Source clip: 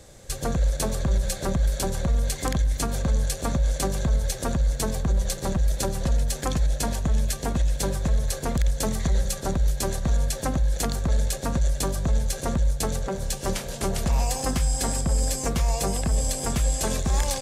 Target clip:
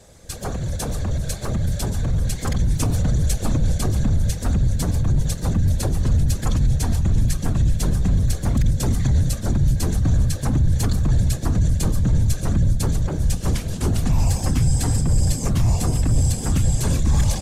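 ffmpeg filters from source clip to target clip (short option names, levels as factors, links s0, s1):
-filter_complex "[0:a]asettb=1/sr,asplit=3[s0][s1][s2];[s0]atrim=end=2.594[s3];[s1]atrim=start=2.59:end=3.74,asetpts=PTS-STARTPTS,afade=t=in:d=0.004:c=qsin,afade=t=out:st=1.146:d=0.004:c=qsin,aecho=1:1:4:0.78,atrim=end_sample=50715[s4];[s2]atrim=start=3.736[s5];[s3][s4]acrossfade=d=0.004:c1=hsin:c2=qsin[s6];[s6][s5]acrossfade=d=0.004:c1=qsin:c2=hsin,afftfilt=real='hypot(re,im)*cos(2*PI*random(0))':imag='hypot(re,im)*sin(2*PI*random(1))':win_size=512:overlap=0.75,acrossover=split=290[s7][s8];[s7]asoftclip=type=tanh:threshold=0.0237[s9];[s9][s8]amix=inputs=2:normalize=0,asubboost=boost=5:cutoff=220,volume=1.88"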